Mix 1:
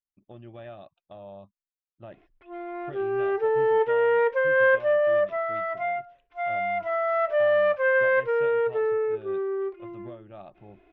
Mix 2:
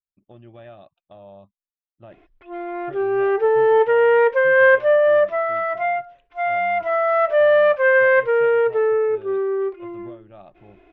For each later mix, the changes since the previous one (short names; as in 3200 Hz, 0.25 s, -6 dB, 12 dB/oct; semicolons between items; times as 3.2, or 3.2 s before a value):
background +6.5 dB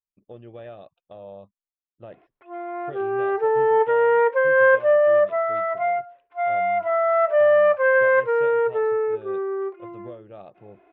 speech: add bell 470 Hz +13.5 dB 0.29 oct; background: add band-pass 860 Hz, Q 0.81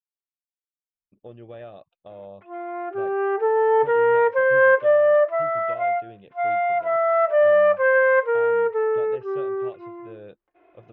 speech: entry +0.95 s